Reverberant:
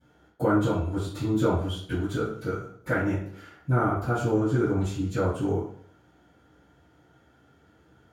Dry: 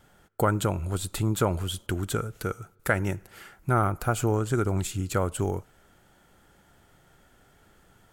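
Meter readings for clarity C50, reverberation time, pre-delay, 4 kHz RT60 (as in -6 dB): 2.5 dB, 0.60 s, 3 ms, 0.55 s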